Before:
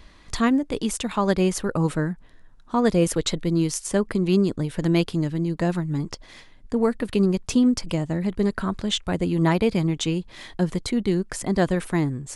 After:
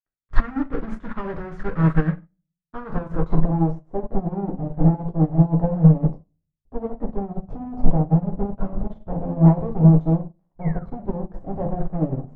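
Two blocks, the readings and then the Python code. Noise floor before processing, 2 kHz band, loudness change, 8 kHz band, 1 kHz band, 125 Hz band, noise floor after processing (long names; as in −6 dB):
−49 dBFS, can't be measured, +1.5 dB, below −35 dB, −0.5 dB, +6.5 dB, −81 dBFS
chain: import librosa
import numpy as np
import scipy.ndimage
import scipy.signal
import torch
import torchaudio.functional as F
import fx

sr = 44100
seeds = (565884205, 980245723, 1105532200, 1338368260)

y = fx.peak_eq(x, sr, hz=2700.0, db=-14.5, octaves=0.53)
y = fx.fuzz(y, sr, gain_db=37.0, gate_db=-38.0)
y = fx.low_shelf(y, sr, hz=200.0, db=9.0)
y = fx.filter_sweep_lowpass(y, sr, from_hz=1600.0, to_hz=730.0, start_s=2.57, end_s=3.74, q=2.4)
y = fx.spec_paint(y, sr, seeds[0], shape='fall', start_s=10.61, length_s=0.27, low_hz=1100.0, high_hz=2300.0, level_db=-31.0)
y = fx.room_shoebox(y, sr, seeds[1], volume_m3=45.0, walls='mixed', distance_m=0.55)
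y = fx.upward_expand(y, sr, threshold_db=-21.0, expansion=2.5)
y = F.gain(torch.from_numpy(y), -7.0).numpy()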